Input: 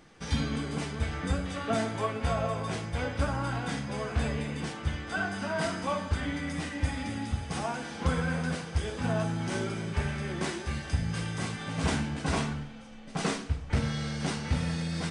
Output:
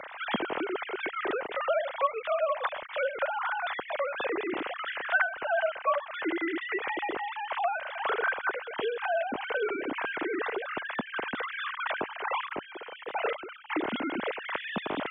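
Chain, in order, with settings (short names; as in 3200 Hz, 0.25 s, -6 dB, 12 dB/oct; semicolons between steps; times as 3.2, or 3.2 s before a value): sine-wave speech; three-band squash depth 70%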